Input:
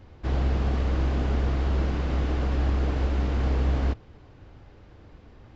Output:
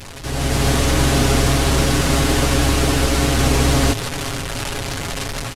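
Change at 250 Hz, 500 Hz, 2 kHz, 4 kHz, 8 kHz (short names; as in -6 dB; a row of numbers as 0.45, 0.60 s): +12.0 dB, +13.0 dB, +17.0 dB, +22.5 dB, n/a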